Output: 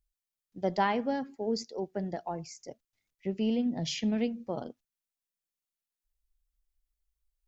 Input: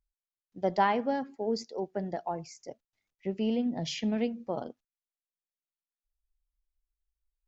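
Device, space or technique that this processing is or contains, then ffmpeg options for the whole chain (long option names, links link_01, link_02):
smiley-face EQ: -af "lowshelf=frequency=150:gain=3.5,equalizer=frequency=840:width_type=o:width=1.8:gain=-3,highshelf=frequency=5500:gain=4.5"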